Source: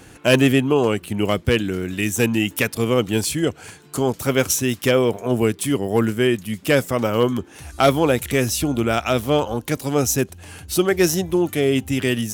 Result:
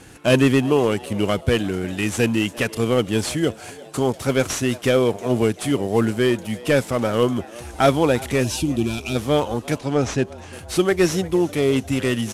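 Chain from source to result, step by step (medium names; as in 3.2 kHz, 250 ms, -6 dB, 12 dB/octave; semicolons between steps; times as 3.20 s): CVSD coder 64 kbps; 8.44–9.16 s: time-frequency box 390–2300 Hz -17 dB; 9.78–10.53 s: distance through air 86 m; frequency-shifting echo 351 ms, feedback 58%, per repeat +110 Hz, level -21 dB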